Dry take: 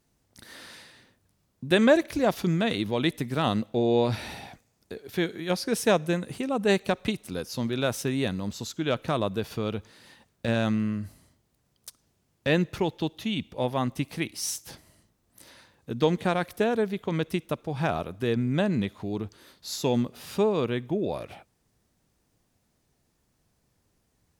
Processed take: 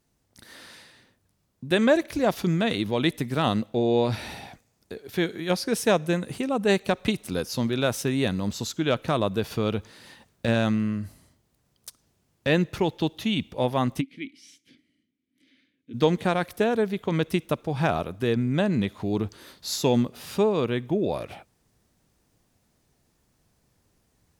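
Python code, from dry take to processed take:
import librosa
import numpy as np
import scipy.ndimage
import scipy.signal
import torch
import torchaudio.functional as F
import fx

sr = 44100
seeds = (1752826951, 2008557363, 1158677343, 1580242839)

p1 = fx.rider(x, sr, range_db=10, speed_s=0.5)
p2 = x + F.gain(torch.from_numpy(p1), 0.0).numpy()
p3 = fx.vowel_filter(p2, sr, vowel='i', at=(14.0, 15.93), fade=0.02)
y = F.gain(torch.from_numpy(p3), -4.0).numpy()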